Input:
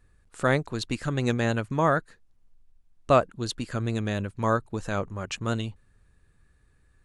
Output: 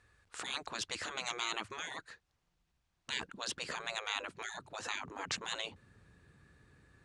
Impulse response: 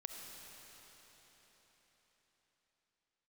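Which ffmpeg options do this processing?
-af "asetnsamples=nb_out_samples=441:pad=0,asendcmd='3.34 equalizer g 2',equalizer=frequency=210:width_type=o:width=2.4:gain=-12.5,afftfilt=real='re*lt(hypot(re,im),0.0398)':imag='im*lt(hypot(re,im),0.0398)':win_size=1024:overlap=0.75,highpass=100,lowpass=6500,volume=4.5dB"

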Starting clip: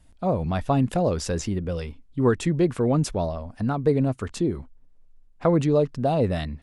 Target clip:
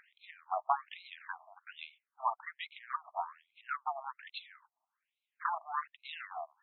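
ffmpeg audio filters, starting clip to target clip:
ffmpeg -i in.wav -af "aeval=exprs='0.376*(cos(1*acos(clip(val(0)/0.376,-1,1)))-cos(1*PI/2))+0.0531*(cos(4*acos(clip(val(0)/0.376,-1,1)))-cos(4*PI/2))+0.0473*(cos(5*acos(clip(val(0)/0.376,-1,1)))-cos(5*PI/2))+0.0299*(cos(7*acos(clip(val(0)/0.376,-1,1)))-cos(7*PI/2))':channel_layout=same,acompressor=mode=upward:threshold=-35dB:ratio=2.5,afftfilt=real='re*between(b*sr/1024,870*pow(3000/870,0.5+0.5*sin(2*PI*1.2*pts/sr))/1.41,870*pow(3000/870,0.5+0.5*sin(2*PI*1.2*pts/sr))*1.41)':imag='im*between(b*sr/1024,870*pow(3000/870,0.5+0.5*sin(2*PI*1.2*pts/sr))/1.41,870*pow(3000/870,0.5+0.5*sin(2*PI*1.2*pts/sr))*1.41)':win_size=1024:overlap=0.75,volume=-1.5dB" out.wav

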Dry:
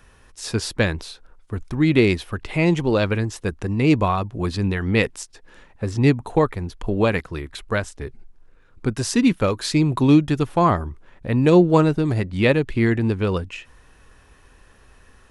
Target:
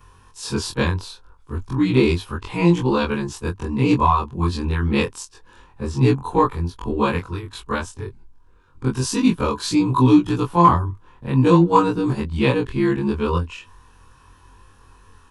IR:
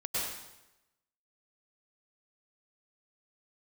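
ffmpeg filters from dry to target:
-filter_complex "[0:a]afftfilt=real='re':imag='-im':win_size=2048:overlap=0.75,equalizer=frequency=100:width_type=o:width=0.33:gain=6,equalizer=frequency=630:width_type=o:width=0.33:gain=-12,equalizer=frequency=1000:width_type=o:width=0.33:gain=11,equalizer=frequency=2000:width_type=o:width=0.33:gain=-9,asplit=2[link_01][link_02];[link_02]asoftclip=type=hard:threshold=-13dB,volume=-10.5dB[link_03];[link_01][link_03]amix=inputs=2:normalize=0,volume=2.5dB"

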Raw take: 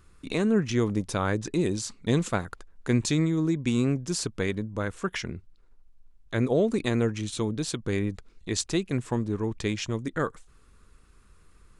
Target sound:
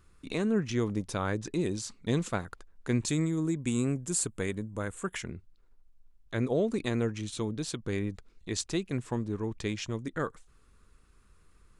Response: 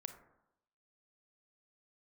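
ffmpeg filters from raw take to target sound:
-filter_complex "[0:a]asettb=1/sr,asplit=3[link_01][link_02][link_03];[link_01]atrim=end=3.084[link_04];[link_02]atrim=start=3.08:end=5.24,asetpts=PTS-STARTPTS,afade=type=in:duration=0.004:curve=qsin,afade=type=out:start_time=2.156:duration=0.004:curve=qsin,highshelf=frequency=6500:width_type=q:width=3:gain=6[link_05];[link_03]atrim=start=5.236[link_06];[link_04][link_05]acrossfade=duration=0.004:curve1=hsin:curve2=qsin[link_07];[link_07][link_06]acrossfade=duration=0.004:curve1=qsin:curve2=hsin,volume=-4.5dB"

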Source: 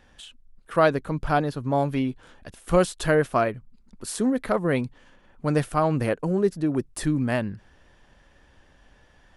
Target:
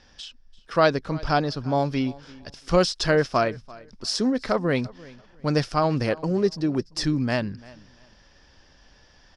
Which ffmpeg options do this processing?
ffmpeg -i in.wav -af "lowpass=frequency=5200:width_type=q:width=7.4,aecho=1:1:341|682:0.0841|0.0194" out.wav

